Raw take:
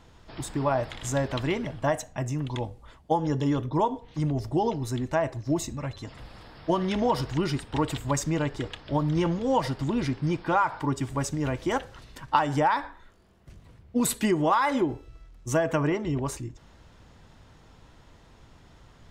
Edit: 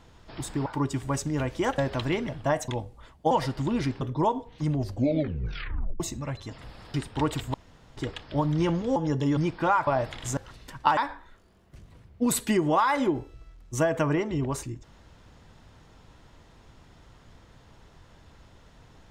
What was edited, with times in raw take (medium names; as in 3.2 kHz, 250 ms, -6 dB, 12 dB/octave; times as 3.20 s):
0.66–1.16 s: swap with 10.73–11.85 s
2.06–2.53 s: delete
3.16–3.57 s: swap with 9.53–10.23 s
4.34 s: tape stop 1.22 s
6.50–7.51 s: delete
8.11–8.54 s: room tone
12.45–12.71 s: delete